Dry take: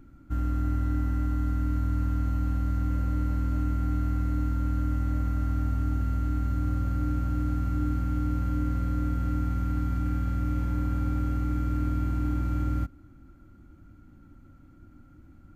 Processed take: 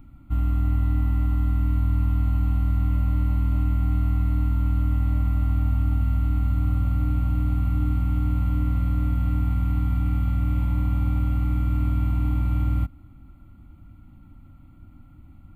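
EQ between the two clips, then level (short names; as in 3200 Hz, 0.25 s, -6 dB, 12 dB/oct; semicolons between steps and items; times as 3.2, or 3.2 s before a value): fixed phaser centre 1600 Hz, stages 6; +6.0 dB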